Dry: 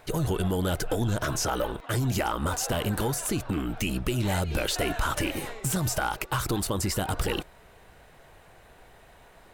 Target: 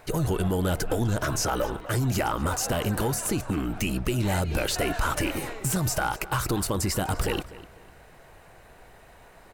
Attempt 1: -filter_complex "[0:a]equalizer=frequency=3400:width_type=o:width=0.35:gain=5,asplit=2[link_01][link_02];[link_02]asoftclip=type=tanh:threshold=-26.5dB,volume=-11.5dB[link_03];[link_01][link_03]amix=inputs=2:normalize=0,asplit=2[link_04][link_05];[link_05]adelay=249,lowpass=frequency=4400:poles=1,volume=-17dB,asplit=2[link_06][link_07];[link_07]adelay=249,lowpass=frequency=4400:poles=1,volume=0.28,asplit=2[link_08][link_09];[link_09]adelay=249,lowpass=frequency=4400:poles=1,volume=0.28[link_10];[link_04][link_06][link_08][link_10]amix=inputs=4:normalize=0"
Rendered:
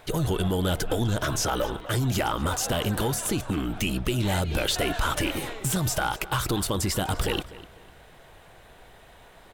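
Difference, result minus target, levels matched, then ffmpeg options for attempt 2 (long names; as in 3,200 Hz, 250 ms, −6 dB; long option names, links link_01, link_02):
4,000 Hz band +3.5 dB
-filter_complex "[0:a]equalizer=frequency=3400:width_type=o:width=0.35:gain=-4.5,asplit=2[link_01][link_02];[link_02]asoftclip=type=tanh:threshold=-26.5dB,volume=-11.5dB[link_03];[link_01][link_03]amix=inputs=2:normalize=0,asplit=2[link_04][link_05];[link_05]adelay=249,lowpass=frequency=4400:poles=1,volume=-17dB,asplit=2[link_06][link_07];[link_07]adelay=249,lowpass=frequency=4400:poles=1,volume=0.28,asplit=2[link_08][link_09];[link_09]adelay=249,lowpass=frequency=4400:poles=1,volume=0.28[link_10];[link_04][link_06][link_08][link_10]amix=inputs=4:normalize=0"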